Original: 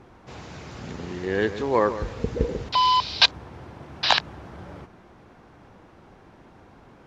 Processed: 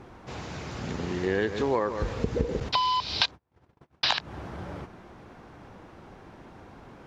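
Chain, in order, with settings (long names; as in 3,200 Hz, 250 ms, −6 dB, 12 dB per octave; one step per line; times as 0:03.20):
downward compressor 20 to 1, threshold −24 dBFS, peak gain reduction 14.5 dB
0:02.60–0:04.19: noise gate −37 dBFS, range −39 dB
level +2.5 dB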